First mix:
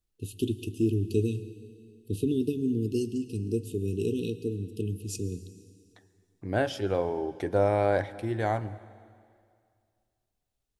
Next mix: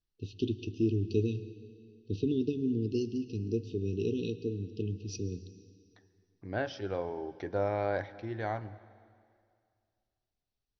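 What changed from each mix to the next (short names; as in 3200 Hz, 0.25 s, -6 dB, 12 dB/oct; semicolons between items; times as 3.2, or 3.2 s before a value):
second voice -4.5 dB; master: add rippled Chebyshev low-pass 6000 Hz, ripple 3 dB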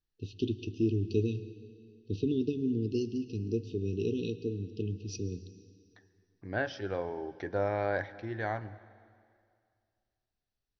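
master: add bell 1700 Hz +6 dB 0.39 oct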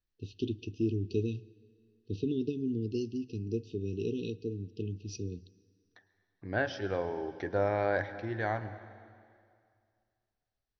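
first voice: send -11.5 dB; second voice: send +6.0 dB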